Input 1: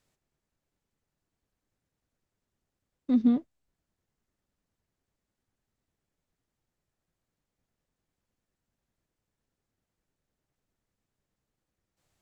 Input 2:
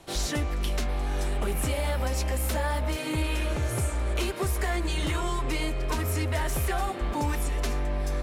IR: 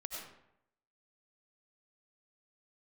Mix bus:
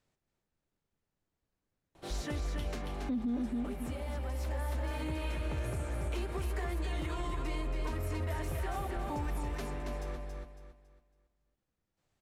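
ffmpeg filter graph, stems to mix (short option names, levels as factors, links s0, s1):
-filter_complex "[0:a]highshelf=f=3300:g=7.5,volume=0.794,asplit=3[s0][s1][s2];[s1]volume=0.422[s3];[1:a]crystalizer=i=1:c=0,adelay=1950,volume=0.447,asplit=2[s4][s5];[s5]volume=0.562[s6];[s2]apad=whole_len=448818[s7];[s4][s7]sidechaincompress=threshold=0.00355:ratio=8:attack=16:release=884[s8];[s3][s6]amix=inputs=2:normalize=0,aecho=0:1:277|554|831|1108|1385:1|0.32|0.102|0.0328|0.0105[s9];[s0][s8][s9]amix=inputs=3:normalize=0,lowpass=f=1800:p=1,alimiter=level_in=1.5:limit=0.0631:level=0:latency=1:release=51,volume=0.668"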